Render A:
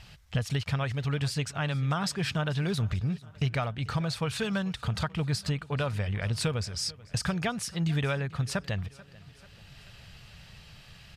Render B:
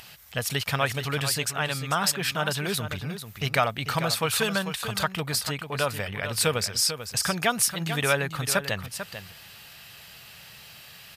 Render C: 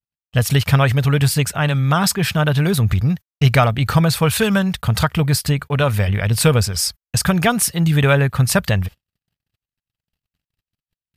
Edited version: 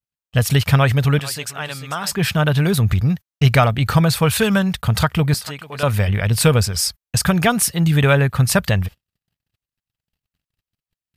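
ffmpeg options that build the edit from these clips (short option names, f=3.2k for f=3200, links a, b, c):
-filter_complex "[1:a]asplit=2[a][b];[2:a]asplit=3[c][d][e];[c]atrim=end=1.192[f];[a]atrim=start=1.188:end=2.122[g];[d]atrim=start=2.118:end=5.342[h];[b]atrim=start=5.338:end=5.832[i];[e]atrim=start=5.828[j];[f][g]acrossfade=d=0.004:c1=hsin:c2=hsin[k];[k][h]acrossfade=d=0.004:c1=hsin:c2=hsin[l];[l][i]acrossfade=d=0.004:c1=hsin:c2=hsin[m];[m][j]acrossfade=d=0.004:c1=hsin:c2=hsin"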